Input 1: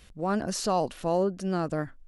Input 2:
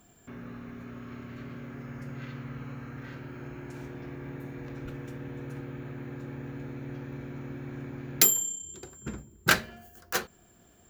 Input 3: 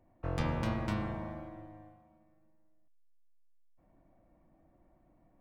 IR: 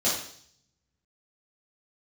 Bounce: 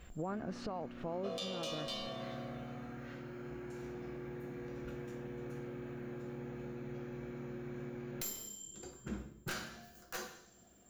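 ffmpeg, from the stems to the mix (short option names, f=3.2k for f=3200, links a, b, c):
-filter_complex "[0:a]lowpass=2.2k,acompressor=threshold=-36dB:ratio=6,volume=0dB,asplit=2[a][b];[1:a]aeval=exprs='(tanh(8.91*val(0)+0.65)-tanh(0.65))/8.91':c=same,volume=-7.5dB,asplit=2[c][d];[d]volume=-9dB[e];[2:a]highpass=f=290:w=0.5412,highpass=f=290:w=1.3066,highshelf=f=2.5k:t=q:w=3:g=10.5,aecho=1:1:1.7:0.99,adelay=1000,volume=-9dB,asplit=2[f][g];[g]volume=-9.5dB[h];[b]apad=whole_len=480471[i];[c][i]sidechaincompress=threshold=-50dB:ratio=8:attack=16:release=274[j];[3:a]atrim=start_sample=2205[k];[e][h]amix=inputs=2:normalize=0[l];[l][k]afir=irnorm=-1:irlink=0[m];[a][j][f][m]amix=inputs=4:normalize=0,alimiter=level_in=5.5dB:limit=-24dB:level=0:latency=1:release=462,volume=-5.5dB"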